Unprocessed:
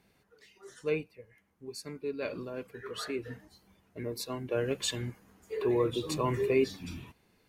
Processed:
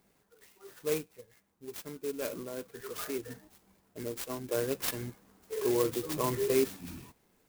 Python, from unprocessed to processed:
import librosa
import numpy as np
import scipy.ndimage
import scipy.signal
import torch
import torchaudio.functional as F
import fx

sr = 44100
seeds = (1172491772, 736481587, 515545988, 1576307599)

y = fx.peak_eq(x, sr, hz=87.0, db=-6.0, octaves=1.8)
y = fx.clock_jitter(y, sr, seeds[0], jitter_ms=0.083)